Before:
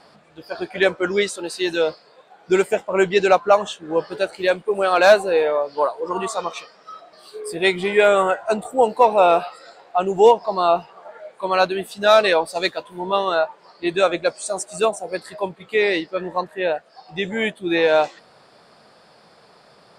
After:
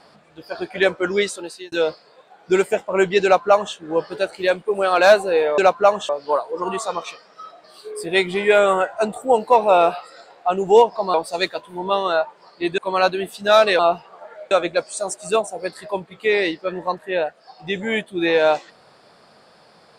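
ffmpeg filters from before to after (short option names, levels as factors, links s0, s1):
-filter_complex "[0:a]asplit=8[s0][s1][s2][s3][s4][s5][s6][s7];[s0]atrim=end=1.72,asetpts=PTS-STARTPTS,afade=t=out:st=1.32:d=0.4[s8];[s1]atrim=start=1.72:end=5.582,asetpts=PTS-STARTPTS,afade=t=in:d=0.004:c=hsin[s9];[s2]atrim=start=3.238:end=3.752[s10];[s3]atrim=start=5.578:end=10.632[s11];[s4]atrim=start=12.358:end=14.002[s12];[s5]atrim=start=11.348:end=12.362[s13];[s6]atrim=start=10.628:end=11.352[s14];[s7]atrim=start=13.998[s15];[s8][s9]concat=n=2:v=0:a=1[s16];[s16][s10]acrossfade=d=0.004:c1=hsin:c2=hsin[s17];[s17][s11]acrossfade=d=0.004:c1=hsin:c2=hsin[s18];[s18][s12]acrossfade=d=0.004:c1=hsin:c2=hsin[s19];[s19][s13]acrossfade=d=0.004:c1=hsin:c2=hsin[s20];[s20][s14]acrossfade=d=0.004:c1=hsin:c2=hsin[s21];[s21][s15]acrossfade=d=0.004:c1=hsin:c2=hsin"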